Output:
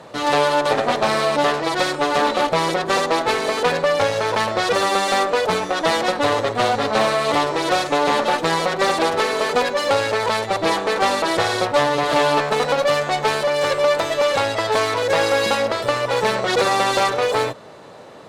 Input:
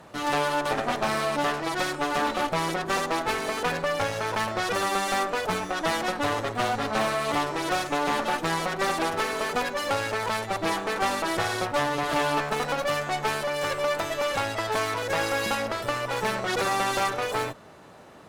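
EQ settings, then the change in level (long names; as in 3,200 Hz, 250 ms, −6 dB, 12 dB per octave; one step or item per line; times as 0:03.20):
octave-band graphic EQ 125/250/500/1,000/2,000/4,000/8,000 Hz +7/+4/+12/+6/+5/+10/+6 dB
−2.5 dB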